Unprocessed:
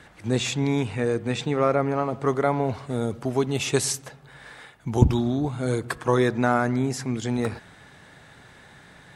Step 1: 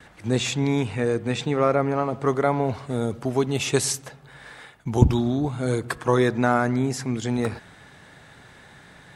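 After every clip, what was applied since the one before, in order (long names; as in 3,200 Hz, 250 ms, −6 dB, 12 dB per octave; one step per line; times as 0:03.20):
noise gate with hold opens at −43 dBFS
level +1 dB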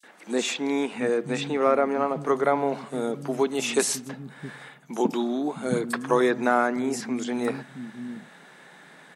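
linear-phase brick-wall high-pass 150 Hz
three-band delay without the direct sound highs, mids, lows 30/700 ms, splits 210/4,800 Hz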